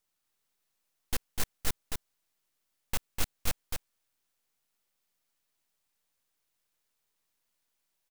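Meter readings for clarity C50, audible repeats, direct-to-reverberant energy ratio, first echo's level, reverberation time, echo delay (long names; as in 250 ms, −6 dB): no reverb audible, 1, no reverb audible, −4.5 dB, no reverb audible, 250 ms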